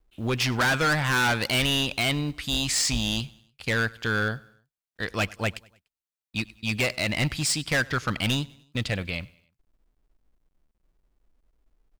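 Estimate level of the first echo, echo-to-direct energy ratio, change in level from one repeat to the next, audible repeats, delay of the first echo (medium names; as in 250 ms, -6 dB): -24.0 dB, -23.0 dB, -6.0 dB, 2, 98 ms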